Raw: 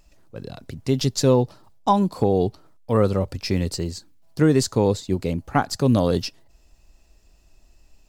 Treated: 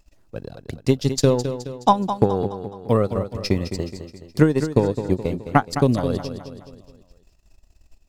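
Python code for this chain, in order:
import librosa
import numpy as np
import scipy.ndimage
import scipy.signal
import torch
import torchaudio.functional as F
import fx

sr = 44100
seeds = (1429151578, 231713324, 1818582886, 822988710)

p1 = fx.transient(x, sr, attack_db=10, sustain_db=-11)
p2 = p1 + fx.echo_feedback(p1, sr, ms=211, feedback_pct=48, wet_db=-10.0, dry=0)
y = p2 * 10.0 ** (-4.5 / 20.0)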